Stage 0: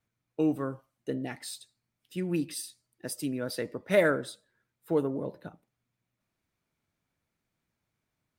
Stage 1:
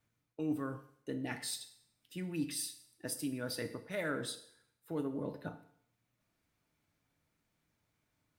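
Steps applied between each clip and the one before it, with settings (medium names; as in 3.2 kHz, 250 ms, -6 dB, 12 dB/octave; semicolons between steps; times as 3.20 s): dynamic bell 480 Hz, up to -6 dB, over -39 dBFS, Q 0.87; reverse; compression 6:1, threshold -37 dBFS, peak gain reduction 14.5 dB; reverse; FDN reverb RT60 0.65 s, low-frequency decay 0.85×, high-frequency decay 1×, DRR 7.5 dB; trim +1.5 dB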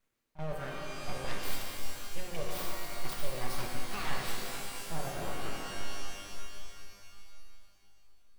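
full-wave rectifier; pre-echo 34 ms -17.5 dB; pitch-shifted reverb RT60 2.7 s, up +12 st, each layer -2 dB, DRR 0.5 dB; trim +1 dB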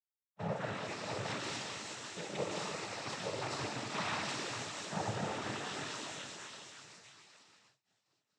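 expander -47 dBFS; noise-vocoded speech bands 12; trim +1.5 dB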